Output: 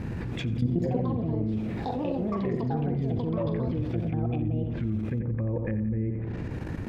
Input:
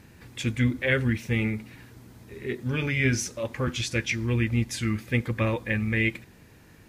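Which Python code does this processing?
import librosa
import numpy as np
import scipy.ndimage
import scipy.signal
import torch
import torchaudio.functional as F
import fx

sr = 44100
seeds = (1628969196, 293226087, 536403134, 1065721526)

y = fx.env_lowpass_down(x, sr, base_hz=570.0, full_db=-23.5)
y = fx.lowpass(y, sr, hz=1100.0, slope=6)
y = fx.low_shelf(y, sr, hz=320.0, db=5.0)
y = fx.level_steps(y, sr, step_db=17)
y = fx.echo_feedback(y, sr, ms=88, feedback_pct=51, wet_db=-10.5)
y = fx.echo_pitch(y, sr, ms=317, semitones=6, count=2, db_per_echo=-3.0)
y = fx.env_flatten(y, sr, amount_pct=70)
y = y * 10.0 ** (-6.0 / 20.0)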